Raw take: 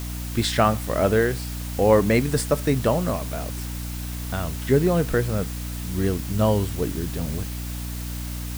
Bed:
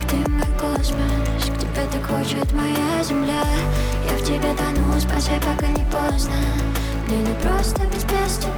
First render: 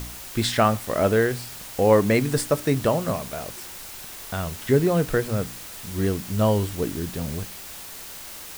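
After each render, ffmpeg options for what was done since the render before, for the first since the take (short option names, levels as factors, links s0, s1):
-af "bandreject=f=60:t=h:w=4,bandreject=f=120:t=h:w=4,bandreject=f=180:t=h:w=4,bandreject=f=240:t=h:w=4,bandreject=f=300:t=h:w=4"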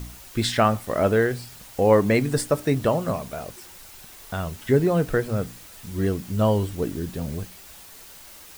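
-af "afftdn=nr=7:nf=-39"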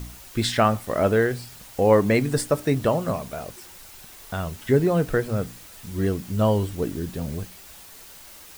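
-af anull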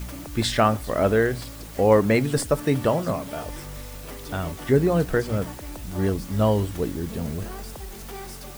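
-filter_complex "[1:a]volume=0.133[s0];[0:a][s0]amix=inputs=2:normalize=0"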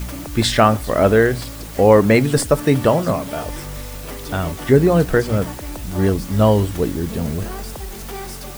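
-af "volume=2.11,alimiter=limit=0.891:level=0:latency=1"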